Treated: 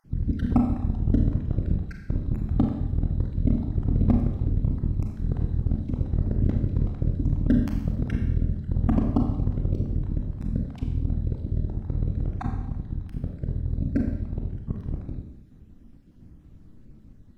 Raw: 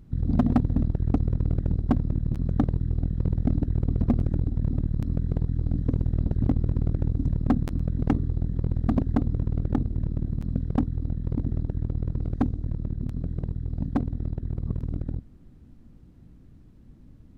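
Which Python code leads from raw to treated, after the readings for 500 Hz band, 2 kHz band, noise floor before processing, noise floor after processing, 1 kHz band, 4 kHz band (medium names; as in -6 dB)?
-0.5 dB, +0.5 dB, -51 dBFS, -50 dBFS, -2.0 dB, no reading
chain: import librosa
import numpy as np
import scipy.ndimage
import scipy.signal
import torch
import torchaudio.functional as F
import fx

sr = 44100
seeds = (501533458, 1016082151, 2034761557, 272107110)

y = fx.spec_dropout(x, sr, seeds[0], share_pct=37)
y = fx.rev_schroeder(y, sr, rt60_s=0.92, comb_ms=29, drr_db=2.0)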